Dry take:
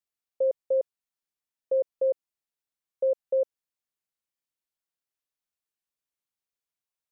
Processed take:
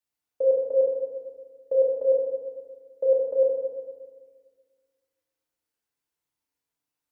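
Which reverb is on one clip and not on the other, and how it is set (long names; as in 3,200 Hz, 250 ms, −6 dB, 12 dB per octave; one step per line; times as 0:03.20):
feedback delay network reverb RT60 1.6 s, low-frequency decay 1.35×, high-frequency decay 0.35×, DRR −4.5 dB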